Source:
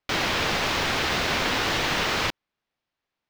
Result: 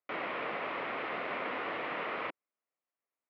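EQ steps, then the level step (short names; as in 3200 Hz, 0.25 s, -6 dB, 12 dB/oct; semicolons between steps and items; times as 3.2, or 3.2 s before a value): speaker cabinet 360–2100 Hz, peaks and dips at 370 Hz -3 dB, 850 Hz -6 dB, 1600 Hz -8 dB; -6.0 dB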